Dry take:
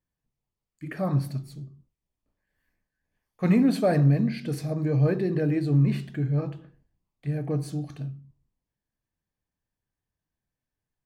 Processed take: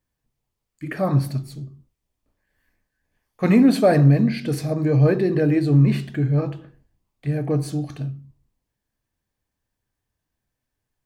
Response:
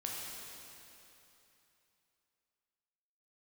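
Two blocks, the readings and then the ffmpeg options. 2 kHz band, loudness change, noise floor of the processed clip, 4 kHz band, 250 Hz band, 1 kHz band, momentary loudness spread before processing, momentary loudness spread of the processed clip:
+7.0 dB, +6.0 dB, −82 dBFS, +7.0 dB, +6.0 dB, +7.0 dB, 17 LU, 17 LU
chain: -af "equalizer=frequency=170:width_type=o:width=0.31:gain=-6,volume=7dB"

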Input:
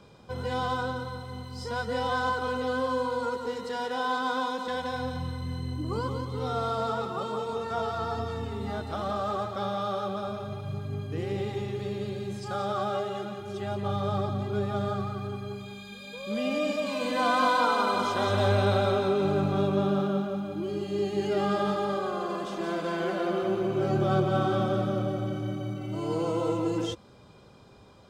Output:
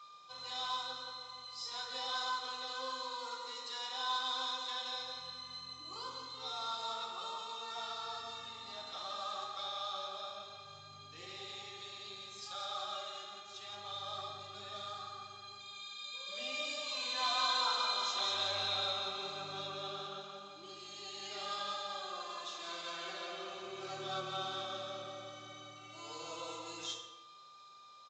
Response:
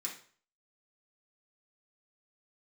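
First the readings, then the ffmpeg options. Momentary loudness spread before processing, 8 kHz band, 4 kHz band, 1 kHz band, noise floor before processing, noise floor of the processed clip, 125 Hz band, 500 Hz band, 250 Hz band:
10 LU, 0.0 dB, +2.5 dB, −10.5 dB, −50 dBFS, −54 dBFS, −28.5 dB, −19.0 dB, −26.5 dB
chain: -filter_complex "[0:a]aeval=exprs='val(0)+0.01*sin(2*PI*1200*n/s)':channel_layout=same,aderivative[link_01];[1:a]atrim=start_sample=2205,asetrate=22491,aresample=44100[link_02];[link_01][link_02]afir=irnorm=-1:irlink=0,aresample=16000,aresample=44100"

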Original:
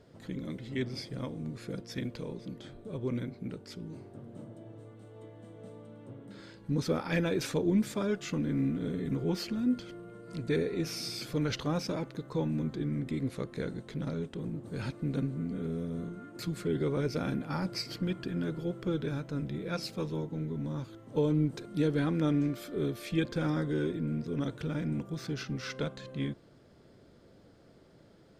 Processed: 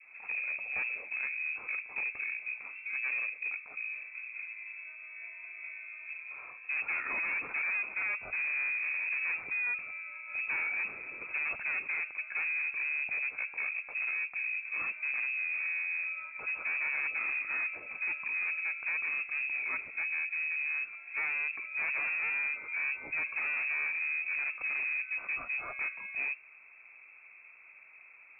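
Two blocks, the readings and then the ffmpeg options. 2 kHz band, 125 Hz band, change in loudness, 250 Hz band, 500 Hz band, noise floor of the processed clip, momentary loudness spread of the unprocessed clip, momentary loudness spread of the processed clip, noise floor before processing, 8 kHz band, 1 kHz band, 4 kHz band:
+15.5 dB, below −35 dB, +1.0 dB, below −30 dB, −21.0 dB, −55 dBFS, 16 LU, 11 LU, −59 dBFS, below −30 dB, −2.0 dB, below −35 dB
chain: -af "adynamicequalizer=threshold=0.00178:dfrequency=1700:dqfactor=1.4:tfrequency=1700:tqfactor=1.4:attack=5:release=100:ratio=0.375:range=2.5:mode=cutabove:tftype=bell,volume=35dB,asoftclip=hard,volume=-35dB,lowpass=frequency=2300:width_type=q:width=0.5098,lowpass=frequency=2300:width_type=q:width=0.6013,lowpass=frequency=2300:width_type=q:width=0.9,lowpass=frequency=2300:width_type=q:width=2.563,afreqshift=-2700,volume=3.5dB"

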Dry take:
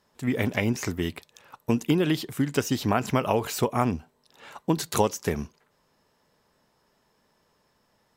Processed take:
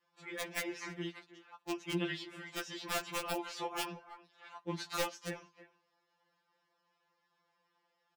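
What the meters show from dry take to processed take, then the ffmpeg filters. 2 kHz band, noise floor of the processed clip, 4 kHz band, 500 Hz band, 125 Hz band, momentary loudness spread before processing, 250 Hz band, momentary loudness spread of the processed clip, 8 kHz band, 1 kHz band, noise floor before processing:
−7.5 dB, −80 dBFS, −6.5 dB, −14.5 dB, −19.5 dB, 10 LU, −16.5 dB, 14 LU, −10.5 dB, −12.0 dB, −69 dBFS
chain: -filter_complex "[0:a]highpass=180,lowpass=4000,adynamicequalizer=threshold=0.01:dfrequency=770:dqfactor=4.5:tfrequency=770:tqfactor=4.5:attack=5:release=100:ratio=0.375:range=2:mode=cutabove:tftype=bell,flanger=delay=4.7:depth=9.6:regen=-54:speed=0.69:shape=triangular,lowshelf=frequency=490:gain=-11,asplit=2[link_01][link_02];[link_02]adelay=320,highpass=300,lowpass=3400,asoftclip=type=hard:threshold=-26dB,volume=-15dB[link_03];[link_01][link_03]amix=inputs=2:normalize=0,aeval=exprs='(mod(11.9*val(0)+1,2)-1)/11.9':channel_layout=same,afftfilt=real='re*2.83*eq(mod(b,8),0)':imag='im*2.83*eq(mod(b,8),0)':win_size=2048:overlap=0.75"

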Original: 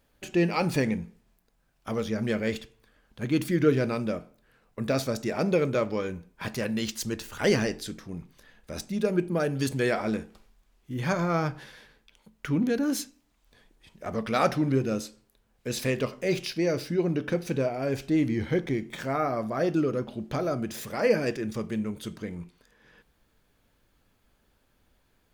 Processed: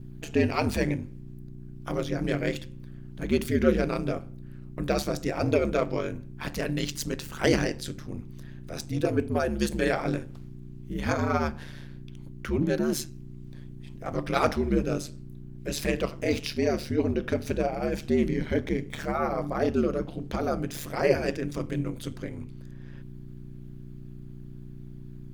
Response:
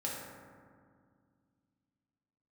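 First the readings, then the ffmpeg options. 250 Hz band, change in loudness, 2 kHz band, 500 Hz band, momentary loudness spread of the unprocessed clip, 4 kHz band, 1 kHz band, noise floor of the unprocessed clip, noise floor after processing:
−0.5 dB, 0.0 dB, 0.0 dB, 0.0 dB, 13 LU, 0.0 dB, +0.5 dB, −69 dBFS, −42 dBFS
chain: -af "aeval=exprs='val(0)+0.01*(sin(2*PI*60*n/s)+sin(2*PI*2*60*n/s)/2+sin(2*PI*3*60*n/s)/3+sin(2*PI*4*60*n/s)/4+sin(2*PI*5*60*n/s)/5)':channel_layout=same,aeval=exprs='val(0)*sin(2*PI*74*n/s)':channel_layout=same,volume=3dB"

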